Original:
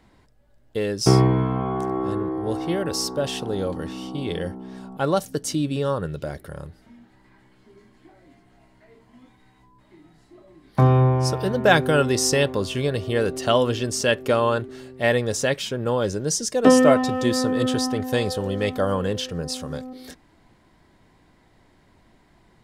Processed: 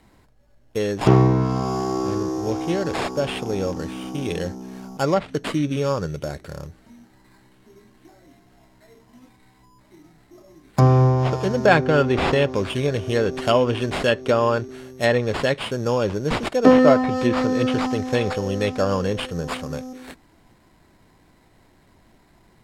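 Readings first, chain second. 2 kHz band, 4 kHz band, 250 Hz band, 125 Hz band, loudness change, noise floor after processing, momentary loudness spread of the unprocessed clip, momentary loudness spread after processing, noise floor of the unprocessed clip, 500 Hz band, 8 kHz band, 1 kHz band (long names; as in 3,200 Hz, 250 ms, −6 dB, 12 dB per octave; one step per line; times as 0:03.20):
+1.0 dB, −2.5 dB, +1.5 dB, +1.5 dB, +1.0 dB, −57 dBFS, 14 LU, 14 LU, −58 dBFS, +1.5 dB, −10.5 dB, +1.5 dB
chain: sample-rate reduction 6,000 Hz, jitter 0%
treble cut that deepens with the level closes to 2,600 Hz, closed at −15 dBFS
level +1.5 dB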